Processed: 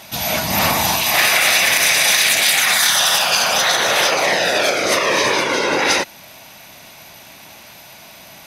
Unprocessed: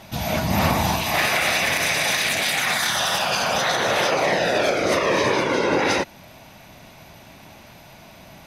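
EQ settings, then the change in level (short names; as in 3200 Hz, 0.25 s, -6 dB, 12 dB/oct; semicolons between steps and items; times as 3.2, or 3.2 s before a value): tilt +2.5 dB/oct; +3.5 dB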